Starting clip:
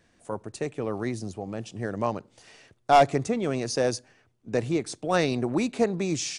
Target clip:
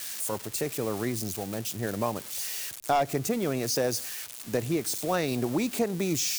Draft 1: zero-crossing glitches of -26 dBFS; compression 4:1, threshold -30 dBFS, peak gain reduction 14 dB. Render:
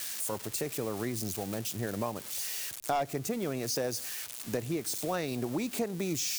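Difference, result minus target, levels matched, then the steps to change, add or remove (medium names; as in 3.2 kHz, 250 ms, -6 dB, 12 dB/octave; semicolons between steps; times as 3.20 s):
compression: peak gain reduction +5.5 dB
change: compression 4:1, threshold -22.5 dBFS, peak gain reduction 8 dB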